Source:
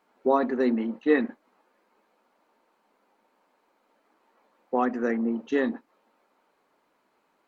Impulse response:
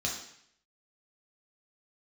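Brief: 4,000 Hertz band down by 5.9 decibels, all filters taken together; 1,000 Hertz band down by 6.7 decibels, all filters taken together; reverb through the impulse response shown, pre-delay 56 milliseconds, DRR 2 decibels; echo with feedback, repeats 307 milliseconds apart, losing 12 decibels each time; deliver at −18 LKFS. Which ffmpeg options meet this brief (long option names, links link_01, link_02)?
-filter_complex "[0:a]equalizer=frequency=1000:width_type=o:gain=-9,equalizer=frequency=4000:width_type=o:gain=-6.5,aecho=1:1:307|614|921:0.251|0.0628|0.0157,asplit=2[link_01][link_02];[1:a]atrim=start_sample=2205,adelay=56[link_03];[link_02][link_03]afir=irnorm=-1:irlink=0,volume=-7dB[link_04];[link_01][link_04]amix=inputs=2:normalize=0,volume=7dB"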